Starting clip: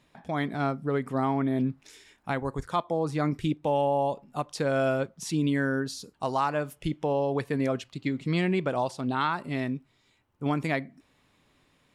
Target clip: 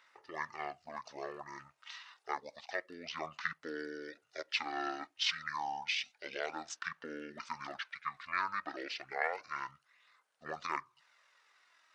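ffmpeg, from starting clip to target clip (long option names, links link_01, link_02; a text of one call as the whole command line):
ffmpeg -i in.wav -af "aphaser=in_gain=1:out_gain=1:delay=1.7:decay=0.34:speed=0.29:type=sinusoidal,asetrate=23361,aresample=44100,atempo=1.88775,highpass=1500,volume=5.5dB" out.wav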